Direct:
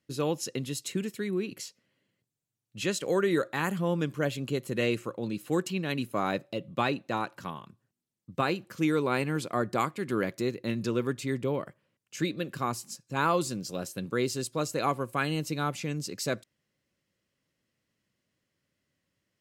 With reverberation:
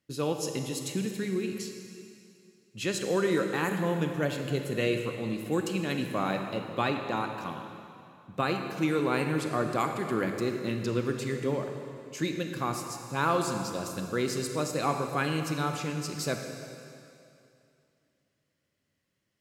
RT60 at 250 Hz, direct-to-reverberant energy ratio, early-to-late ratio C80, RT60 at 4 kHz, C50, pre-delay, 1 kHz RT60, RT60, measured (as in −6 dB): 2.5 s, 4.5 dB, 6.0 dB, 2.5 s, 5.0 dB, 25 ms, 2.6 s, 2.6 s